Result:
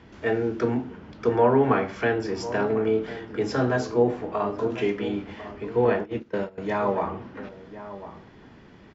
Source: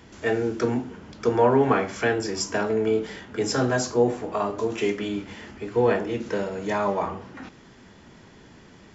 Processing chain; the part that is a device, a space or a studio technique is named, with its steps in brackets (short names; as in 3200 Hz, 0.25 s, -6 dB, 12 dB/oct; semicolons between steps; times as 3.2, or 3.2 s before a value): shout across a valley (air absorption 180 m; outdoor echo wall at 180 m, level -13 dB); 5.85–6.58 gate -27 dBFS, range -18 dB